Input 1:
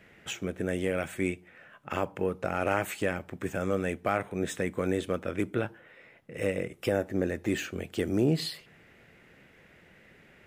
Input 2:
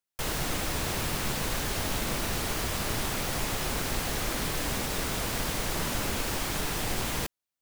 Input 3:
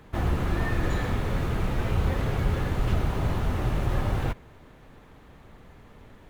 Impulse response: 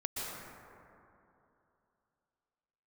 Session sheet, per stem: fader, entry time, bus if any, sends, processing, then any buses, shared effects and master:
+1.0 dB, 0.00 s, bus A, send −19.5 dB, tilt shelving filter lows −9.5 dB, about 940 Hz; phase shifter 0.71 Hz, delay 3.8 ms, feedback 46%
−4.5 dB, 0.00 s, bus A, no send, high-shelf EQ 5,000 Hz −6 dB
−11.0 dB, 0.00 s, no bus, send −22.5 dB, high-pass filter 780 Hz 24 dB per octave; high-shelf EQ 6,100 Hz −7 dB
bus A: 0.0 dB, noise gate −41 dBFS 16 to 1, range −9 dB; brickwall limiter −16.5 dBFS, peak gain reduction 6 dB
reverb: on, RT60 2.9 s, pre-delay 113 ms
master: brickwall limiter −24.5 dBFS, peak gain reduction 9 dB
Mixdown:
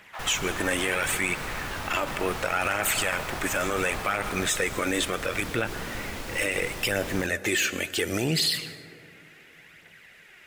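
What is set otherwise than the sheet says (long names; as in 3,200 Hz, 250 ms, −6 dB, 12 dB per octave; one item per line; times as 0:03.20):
stem 1 +1.0 dB → +8.0 dB
stem 3 −11.0 dB → −0.5 dB
master: missing brickwall limiter −24.5 dBFS, peak gain reduction 9 dB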